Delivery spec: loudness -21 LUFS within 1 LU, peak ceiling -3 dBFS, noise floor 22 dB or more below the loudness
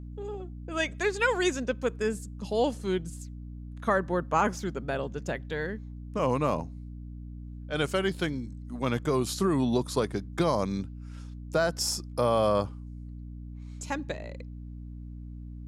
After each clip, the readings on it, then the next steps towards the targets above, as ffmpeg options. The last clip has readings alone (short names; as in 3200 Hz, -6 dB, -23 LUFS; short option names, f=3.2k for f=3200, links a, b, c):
hum 60 Hz; harmonics up to 300 Hz; hum level -38 dBFS; loudness -29.5 LUFS; peak -12.5 dBFS; loudness target -21.0 LUFS
-> -af "bandreject=f=60:t=h:w=6,bandreject=f=120:t=h:w=6,bandreject=f=180:t=h:w=6,bandreject=f=240:t=h:w=6,bandreject=f=300:t=h:w=6"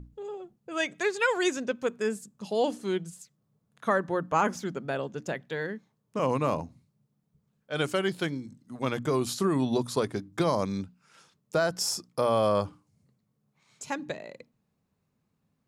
hum none; loudness -29.5 LUFS; peak -12.0 dBFS; loudness target -21.0 LUFS
-> -af "volume=8.5dB"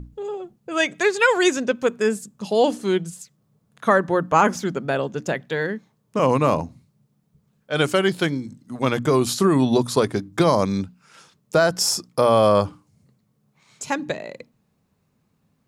loudness -21.0 LUFS; peak -3.5 dBFS; noise floor -68 dBFS